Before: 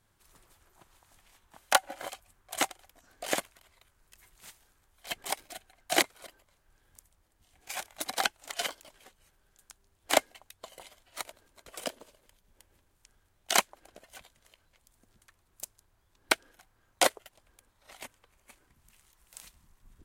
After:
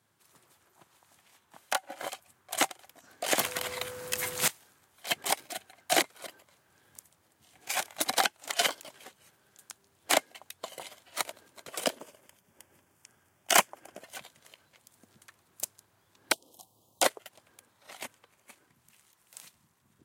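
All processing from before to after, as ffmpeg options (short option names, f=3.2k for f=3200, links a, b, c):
-filter_complex "[0:a]asettb=1/sr,asplit=3[a][b][c];[a]atrim=end=3.394[d];[b]atrim=start=3.39:end=4.48,asetpts=PTS-STARTPTS,afade=t=in:d=0.004:c=qsin,afade=t=out:st=1.086:d=0.004:c=qsin,aeval=exprs='0.0841*sin(PI/2*7.08*val(0)/0.0841)':c=same,aeval=exprs='val(0)+0.00447*sin(2*PI*500*n/s)':c=same[e];[c]atrim=start=4.476[f];[d][e]acrossfade=d=0.004:c1=hsin:c2=qsin[g];[g][f]acrossfade=d=0.004:c1=qsin:c2=hsin,asettb=1/sr,asplit=3[h][i][j];[h]atrim=end=11.984[k];[i]atrim=start=11.98:end=14.01,asetpts=PTS-STARTPTS,afade=t=in:d=0.004:c=qsin,afade=t=out:st=2.026:d=0.004:c=qsin,equalizer=f=4k:w=5.4:g=-14,bandreject=f=470:w=14,asoftclip=type=hard:threshold=-19.5dB[l];[j]atrim=start=14.006[m];[k][l]acrossfade=d=0.004:c1=hsin:c2=qsin[n];[n][m]acrossfade=d=0.004:c1=qsin:c2=hsin,asettb=1/sr,asplit=3[o][p][q];[o]atrim=end=16.324[r];[p]atrim=start=16.32:end=17.02,asetpts=PTS-STARTPTS,afade=t=in:d=0.004:c=qsin,afade=t=out:st=0.696:d=0.004:c=qsin,asuperstop=centerf=1800:order=8:qfactor=0.86,highshelf=f=7.6k:g=8.5[s];[q]atrim=start=17.016[t];[r][s]acrossfade=d=0.004:c1=hsin:c2=qsin[u];[u][t]acrossfade=d=0.004:c1=qsin:c2=hsin,highpass=f=110:w=0.5412,highpass=f=110:w=1.3066,alimiter=limit=-15dB:level=0:latency=1:release=290,dynaudnorm=f=290:g=17:m=6.5dB"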